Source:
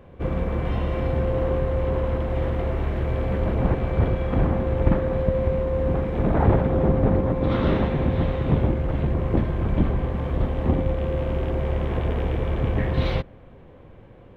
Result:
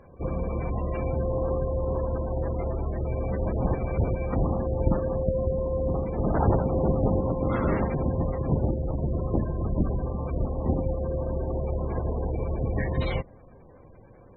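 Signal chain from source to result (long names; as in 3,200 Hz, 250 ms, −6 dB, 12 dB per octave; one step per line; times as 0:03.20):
gate on every frequency bin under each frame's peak −25 dB strong
parametric band 2,500 Hz +7 dB 2.8 octaves
level −4.5 dB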